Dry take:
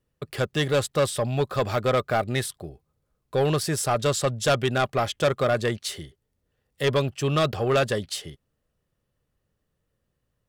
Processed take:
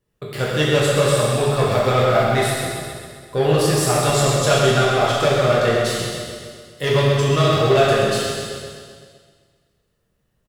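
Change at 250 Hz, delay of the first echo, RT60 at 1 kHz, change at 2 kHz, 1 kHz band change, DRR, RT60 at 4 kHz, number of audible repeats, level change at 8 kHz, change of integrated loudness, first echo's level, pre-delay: +6.5 dB, 0.13 s, 1.9 s, +7.5 dB, +7.5 dB, -7.0 dB, 1.8 s, 1, +7.5 dB, +7.0 dB, -6.5 dB, 4 ms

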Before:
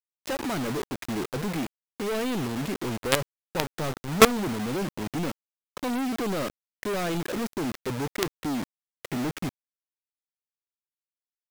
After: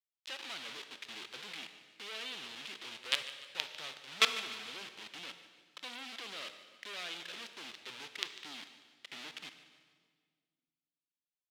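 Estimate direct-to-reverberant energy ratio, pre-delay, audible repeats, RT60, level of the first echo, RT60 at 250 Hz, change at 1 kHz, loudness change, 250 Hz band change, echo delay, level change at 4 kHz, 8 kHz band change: 8.5 dB, 26 ms, 3, 1.7 s, -16.0 dB, 2.3 s, -15.5 dB, -11.0 dB, -29.0 dB, 0.148 s, -2.0 dB, -12.0 dB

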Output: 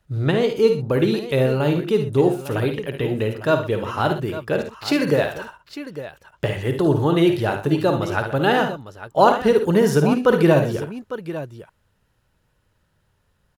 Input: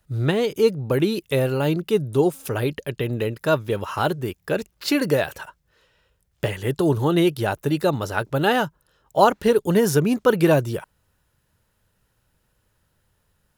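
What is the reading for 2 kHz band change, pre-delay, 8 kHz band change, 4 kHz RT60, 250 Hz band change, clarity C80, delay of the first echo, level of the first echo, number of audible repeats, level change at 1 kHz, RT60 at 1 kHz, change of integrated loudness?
+1.5 dB, none, -3.5 dB, none, +2.0 dB, none, 54 ms, -8.0 dB, 3, +2.0 dB, none, +2.0 dB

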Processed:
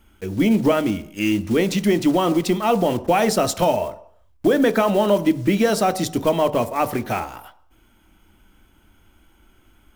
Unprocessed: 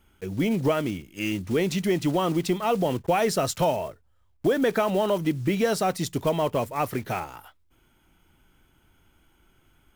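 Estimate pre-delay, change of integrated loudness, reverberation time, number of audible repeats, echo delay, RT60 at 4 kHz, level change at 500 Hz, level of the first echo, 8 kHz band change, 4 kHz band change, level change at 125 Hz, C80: 3 ms, +5.5 dB, 0.70 s, none, none, 0.70 s, +5.5 dB, none, +5.0 dB, +5.0 dB, +3.0 dB, 19.5 dB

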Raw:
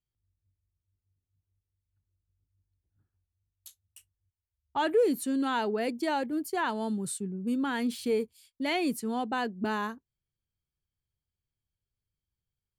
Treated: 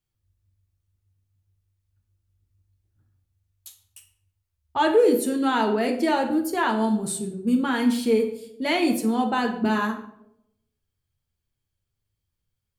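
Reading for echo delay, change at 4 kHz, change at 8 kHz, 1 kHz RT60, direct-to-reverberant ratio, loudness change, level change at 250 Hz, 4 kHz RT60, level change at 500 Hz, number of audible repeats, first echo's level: none, +6.5 dB, +6.5 dB, 0.70 s, 2.5 dB, +7.5 dB, +8.0 dB, 0.45 s, +7.5 dB, none, none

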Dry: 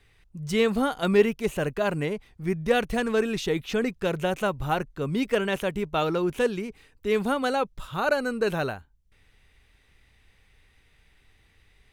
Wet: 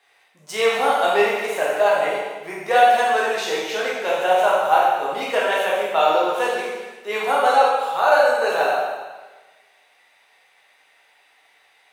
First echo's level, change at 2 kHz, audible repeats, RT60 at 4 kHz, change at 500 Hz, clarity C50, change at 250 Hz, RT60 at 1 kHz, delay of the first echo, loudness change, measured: none, +8.5 dB, none, 1.2 s, +6.0 dB, -0.5 dB, -9.0 dB, 1.3 s, none, +7.0 dB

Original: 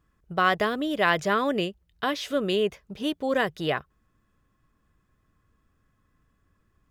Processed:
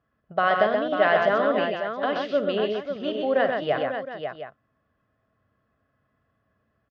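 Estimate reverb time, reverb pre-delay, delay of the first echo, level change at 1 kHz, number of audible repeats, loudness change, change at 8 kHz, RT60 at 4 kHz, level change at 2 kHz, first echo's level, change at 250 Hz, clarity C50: none, none, 53 ms, +2.5 dB, 5, +2.0 dB, under -15 dB, none, +1.0 dB, -12.0 dB, -1.5 dB, none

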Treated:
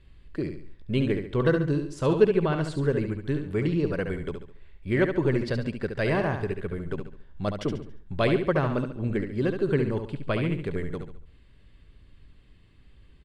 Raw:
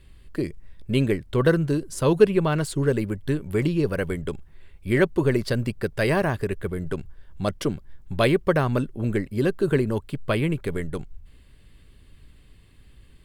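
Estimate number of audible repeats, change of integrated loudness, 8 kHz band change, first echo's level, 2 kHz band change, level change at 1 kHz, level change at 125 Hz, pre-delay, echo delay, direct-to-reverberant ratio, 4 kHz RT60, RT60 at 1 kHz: 4, -3.0 dB, under -10 dB, -7.0 dB, -3.5 dB, -3.0 dB, -3.0 dB, none, 70 ms, none, none, none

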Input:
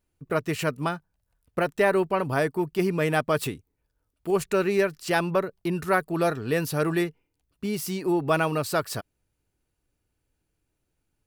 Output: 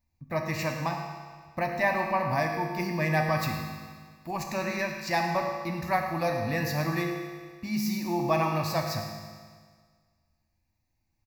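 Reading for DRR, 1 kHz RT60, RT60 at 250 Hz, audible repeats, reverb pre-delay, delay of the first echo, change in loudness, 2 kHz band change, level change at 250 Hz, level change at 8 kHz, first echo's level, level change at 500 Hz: 1.0 dB, 1.7 s, 1.7 s, 1, 4 ms, 0.109 s, -3.0 dB, -1.5 dB, -3.5 dB, -4.5 dB, -12.0 dB, -6.0 dB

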